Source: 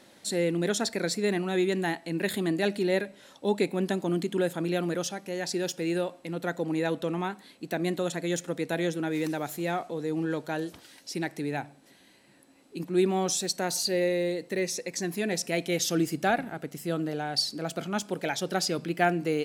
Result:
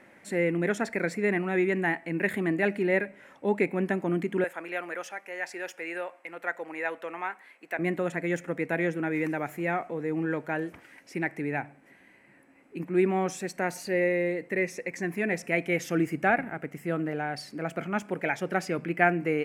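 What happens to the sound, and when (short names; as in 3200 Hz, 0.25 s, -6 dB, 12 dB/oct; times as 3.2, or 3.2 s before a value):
4.44–7.79 HPF 660 Hz
whole clip: resonant high shelf 2900 Hz -10 dB, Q 3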